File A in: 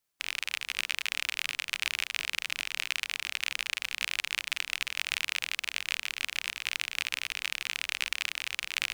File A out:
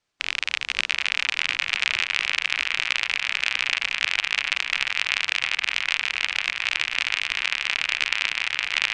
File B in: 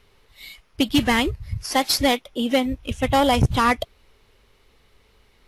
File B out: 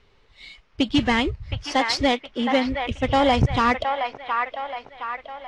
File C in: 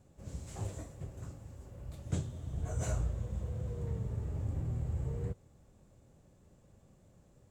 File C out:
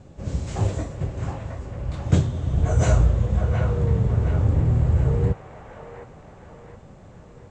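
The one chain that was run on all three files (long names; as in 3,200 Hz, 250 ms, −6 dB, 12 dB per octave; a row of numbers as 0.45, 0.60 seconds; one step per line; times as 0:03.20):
Bessel low-pass filter 5,000 Hz, order 6
delay with a band-pass on its return 717 ms, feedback 49%, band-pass 1,300 Hz, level −3 dB
loudness normalisation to −23 LKFS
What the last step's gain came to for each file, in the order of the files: +8.5, −1.0, +16.5 decibels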